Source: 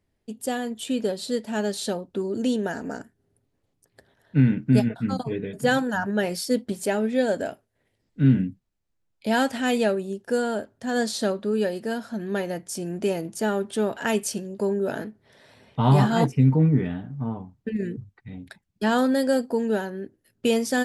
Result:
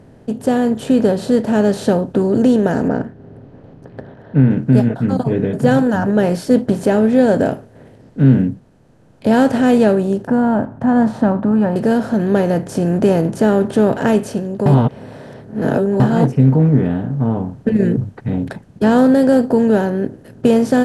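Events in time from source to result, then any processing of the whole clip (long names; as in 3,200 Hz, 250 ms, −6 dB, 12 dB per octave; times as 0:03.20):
0:02.88–0:04.51: high-frequency loss of the air 320 metres
0:10.27–0:11.76: drawn EQ curve 280 Hz 0 dB, 430 Hz −18 dB, 890 Hz +7 dB, 4,400 Hz −26 dB
0:14.66–0:16.00: reverse
whole clip: compressor on every frequency bin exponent 0.6; tilt shelving filter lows +7.5 dB, about 1,200 Hz; automatic gain control gain up to 4 dB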